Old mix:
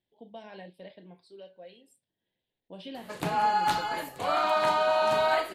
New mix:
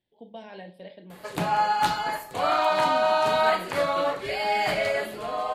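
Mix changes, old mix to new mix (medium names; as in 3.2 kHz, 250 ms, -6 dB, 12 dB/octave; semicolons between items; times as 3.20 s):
background: entry -1.85 s; reverb: on, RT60 0.60 s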